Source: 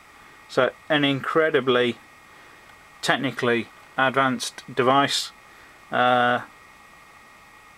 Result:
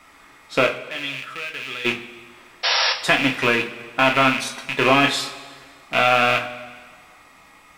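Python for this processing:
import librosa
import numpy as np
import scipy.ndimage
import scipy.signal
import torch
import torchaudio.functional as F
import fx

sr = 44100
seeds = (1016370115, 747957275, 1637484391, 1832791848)

p1 = fx.rattle_buzz(x, sr, strikes_db=-35.0, level_db=-10.0)
p2 = fx.tone_stack(p1, sr, knobs='5-5-5', at=(0.78, 1.85))
p3 = fx.hum_notches(p2, sr, base_hz=50, count=5)
p4 = fx.level_steps(p3, sr, step_db=21)
p5 = p3 + F.gain(torch.from_numpy(p4), -3.0).numpy()
p6 = fx.spec_paint(p5, sr, seeds[0], shape='noise', start_s=2.63, length_s=0.3, low_hz=460.0, high_hz=5700.0, level_db=-18.0)
p7 = fx.rev_double_slope(p6, sr, seeds[1], early_s=0.26, late_s=1.7, knee_db=-17, drr_db=1.5)
y = F.gain(torch.from_numpy(p7), -3.5).numpy()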